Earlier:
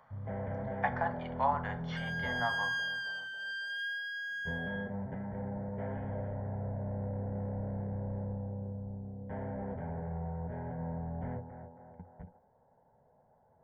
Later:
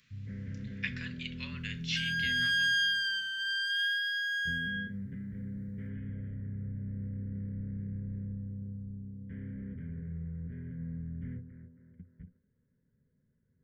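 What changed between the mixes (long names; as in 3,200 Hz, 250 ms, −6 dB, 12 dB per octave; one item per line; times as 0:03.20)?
speech: remove Savitzky-Golay smoothing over 41 samples
second sound +12.0 dB
master: add Chebyshev band-stop filter 270–2,200 Hz, order 2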